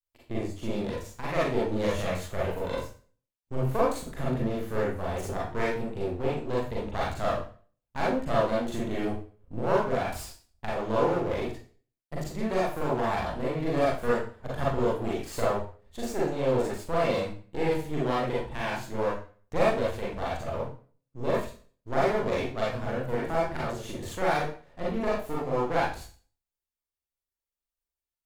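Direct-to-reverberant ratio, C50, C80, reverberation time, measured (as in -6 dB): -6.5 dB, 0.5 dB, 7.5 dB, 0.40 s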